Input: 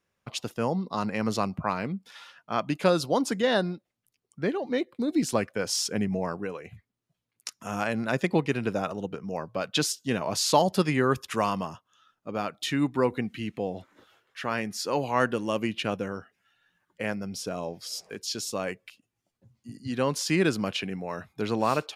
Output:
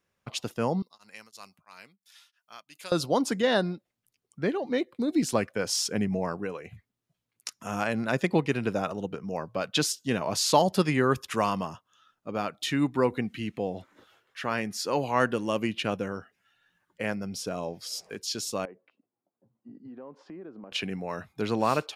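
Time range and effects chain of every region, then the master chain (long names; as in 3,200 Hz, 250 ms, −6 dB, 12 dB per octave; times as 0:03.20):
0:00.82–0:02.92: high-pass filter 45 Hz + first-order pre-emphasis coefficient 0.97 + tremolo along a rectified sine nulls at 3 Hz
0:18.65–0:20.72: flat-topped band-pass 480 Hz, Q 0.6 + downward compressor 5 to 1, threshold −42 dBFS
whole clip: no processing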